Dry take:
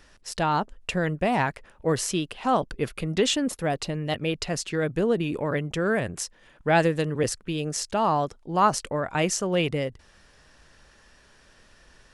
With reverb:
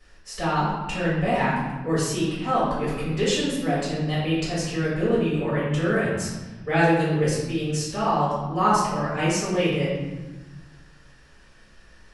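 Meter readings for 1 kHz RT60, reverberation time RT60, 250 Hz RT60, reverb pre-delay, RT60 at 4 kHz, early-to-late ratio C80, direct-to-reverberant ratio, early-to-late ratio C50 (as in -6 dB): 1.2 s, 1.2 s, 1.7 s, 4 ms, 0.90 s, 2.5 dB, -11.0 dB, -0.5 dB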